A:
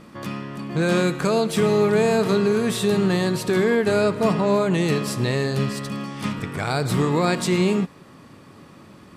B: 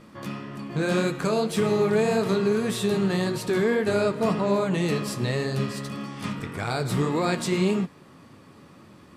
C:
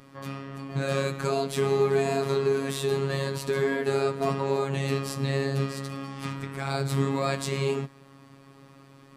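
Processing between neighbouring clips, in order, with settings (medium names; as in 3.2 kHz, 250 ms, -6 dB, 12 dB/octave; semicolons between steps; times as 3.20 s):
flange 1.8 Hz, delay 7.8 ms, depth 7.3 ms, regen -44%
robot voice 137 Hz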